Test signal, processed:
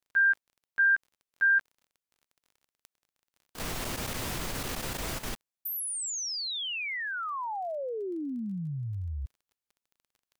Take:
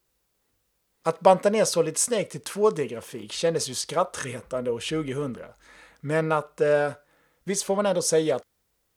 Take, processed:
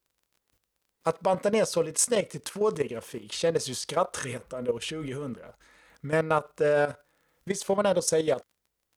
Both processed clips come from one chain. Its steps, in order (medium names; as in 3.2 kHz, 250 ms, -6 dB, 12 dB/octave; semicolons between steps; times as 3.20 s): level held to a coarse grid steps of 12 dB; crackle 26 per s -52 dBFS; trim +2 dB